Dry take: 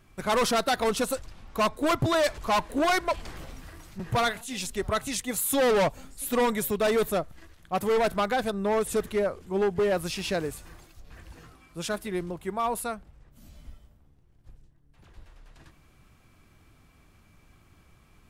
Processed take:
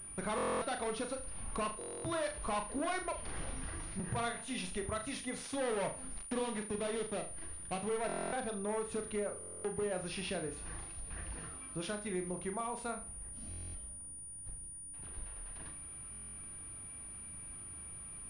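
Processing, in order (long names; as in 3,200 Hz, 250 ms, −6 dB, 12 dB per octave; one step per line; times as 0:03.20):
0:05.98–0:07.89: gap after every zero crossing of 0.23 ms
downward compressor 6 to 1, threshold −38 dBFS, peak gain reduction 15 dB
flutter between parallel walls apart 6.6 metres, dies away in 0.34 s
buffer that repeats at 0:00.36/0:01.79/0:08.07/0:09.39/0:13.49/0:16.11, samples 1,024, times 10
switching amplifier with a slow clock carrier 9,500 Hz
level +1 dB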